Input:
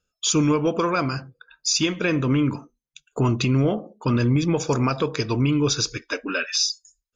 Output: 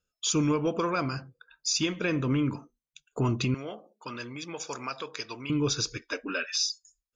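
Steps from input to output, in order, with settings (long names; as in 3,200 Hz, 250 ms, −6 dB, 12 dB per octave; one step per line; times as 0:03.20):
0:03.54–0:05.50: high-pass filter 1,300 Hz 6 dB per octave
level −6 dB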